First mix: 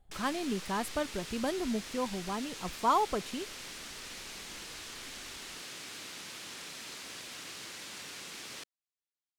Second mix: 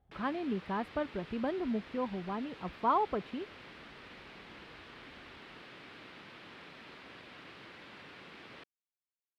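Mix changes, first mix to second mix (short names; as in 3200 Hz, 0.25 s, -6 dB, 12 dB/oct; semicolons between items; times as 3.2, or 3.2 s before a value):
speech: add HPF 58 Hz; master: add air absorption 420 m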